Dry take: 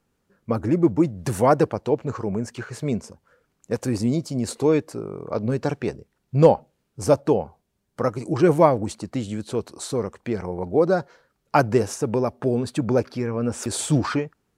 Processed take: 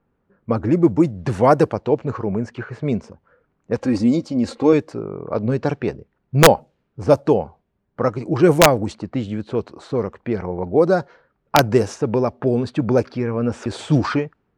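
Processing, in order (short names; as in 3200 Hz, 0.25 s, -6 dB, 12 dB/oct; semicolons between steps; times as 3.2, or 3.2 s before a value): low-pass opened by the level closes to 1600 Hz, open at -13 dBFS; wrapped overs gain 4.5 dB; 3.77–4.73 comb 3.7 ms, depth 60%; gain +3.5 dB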